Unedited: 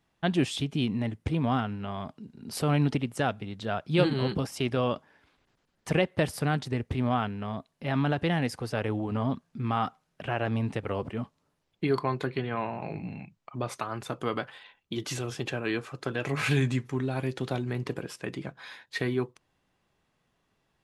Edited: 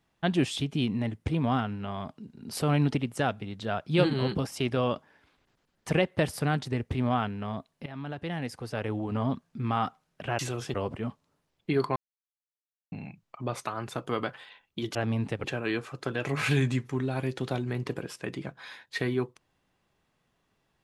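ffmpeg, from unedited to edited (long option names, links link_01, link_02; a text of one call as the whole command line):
ffmpeg -i in.wav -filter_complex "[0:a]asplit=8[link_01][link_02][link_03][link_04][link_05][link_06][link_07][link_08];[link_01]atrim=end=7.86,asetpts=PTS-STARTPTS,afade=type=out:start_time=7.856:duration=0.004:curve=hsin:silence=0.16788[link_09];[link_02]atrim=start=7.86:end=10.392,asetpts=PTS-STARTPTS,afade=type=in:duration=1.35:silence=0.16788[link_10];[link_03]atrim=start=15.088:end=15.442[link_11];[link_04]atrim=start=10.878:end=12.1,asetpts=PTS-STARTPTS,afade=type=out:start_time=1.218:duration=0.004:curve=hsin[link_12];[link_05]atrim=start=12.1:end=13.06,asetpts=PTS-STARTPTS,volume=0[link_13];[link_06]atrim=start=13.06:end=15.092,asetpts=PTS-STARTPTS,afade=type=in:duration=0.004:curve=hsin[link_14];[link_07]atrim=start=10.388:end=10.882[link_15];[link_08]atrim=start=15.438[link_16];[link_09][link_10]concat=n=2:v=0:a=1[link_17];[link_17][link_11]acrossfade=duration=0.004:curve1=hsin:curve2=hsin[link_18];[link_12][link_13][link_14]concat=n=3:v=0:a=1[link_19];[link_18][link_19]acrossfade=duration=0.004:curve1=hsin:curve2=hsin[link_20];[link_20][link_15]acrossfade=duration=0.004:curve1=hsin:curve2=hsin[link_21];[link_21][link_16]acrossfade=duration=0.004:curve1=hsin:curve2=hsin" out.wav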